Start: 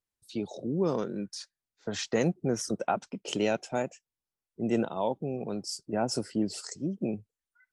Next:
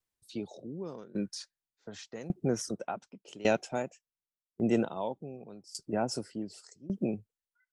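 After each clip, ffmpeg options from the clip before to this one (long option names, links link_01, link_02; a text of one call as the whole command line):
ffmpeg -i in.wav -af "aeval=exprs='val(0)*pow(10,-21*if(lt(mod(0.87*n/s,1),2*abs(0.87)/1000),1-mod(0.87*n/s,1)/(2*abs(0.87)/1000),(mod(0.87*n/s,1)-2*abs(0.87)/1000)/(1-2*abs(0.87)/1000))/20)':channel_layout=same,volume=3dB" out.wav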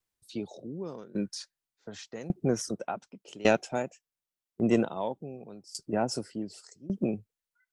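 ffmpeg -i in.wav -af "aeval=exprs='0.251*(cos(1*acos(clip(val(0)/0.251,-1,1)))-cos(1*PI/2))+0.0282*(cos(3*acos(clip(val(0)/0.251,-1,1)))-cos(3*PI/2))':channel_layout=same,volume=5.5dB" out.wav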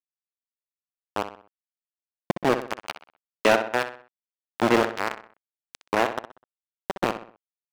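ffmpeg -i in.wav -filter_complex "[0:a]aeval=exprs='val(0)*gte(abs(val(0)),0.075)':channel_layout=same,asplit=2[link_01][link_02];[link_02]adelay=63,lowpass=frequency=3300:poles=1,volume=-12.5dB,asplit=2[link_03][link_04];[link_04]adelay=63,lowpass=frequency=3300:poles=1,volume=0.43,asplit=2[link_05][link_06];[link_06]adelay=63,lowpass=frequency=3300:poles=1,volume=0.43,asplit=2[link_07][link_08];[link_08]adelay=63,lowpass=frequency=3300:poles=1,volume=0.43[link_09];[link_01][link_03][link_05][link_07][link_09]amix=inputs=5:normalize=0,asplit=2[link_10][link_11];[link_11]highpass=frequency=720:poles=1,volume=21dB,asoftclip=type=tanh:threshold=-6dB[link_12];[link_10][link_12]amix=inputs=2:normalize=0,lowpass=frequency=2400:poles=1,volume=-6dB" out.wav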